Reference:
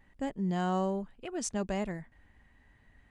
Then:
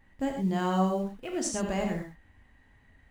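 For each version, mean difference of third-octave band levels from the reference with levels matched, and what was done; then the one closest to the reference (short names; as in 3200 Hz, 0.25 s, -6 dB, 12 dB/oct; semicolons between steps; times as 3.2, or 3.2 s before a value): 4.0 dB: in parallel at -12 dB: bit-crush 8-bit; on the sum: non-linear reverb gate 0.14 s flat, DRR 1.5 dB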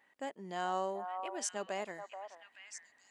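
7.5 dB: HPF 500 Hz 12 dB/oct; delay with a stepping band-pass 0.431 s, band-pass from 890 Hz, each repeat 1.4 oct, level -4 dB; gain -1 dB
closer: first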